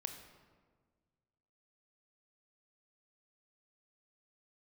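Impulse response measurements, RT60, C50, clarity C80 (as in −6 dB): 1.6 s, 7.5 dB, 9.0 dB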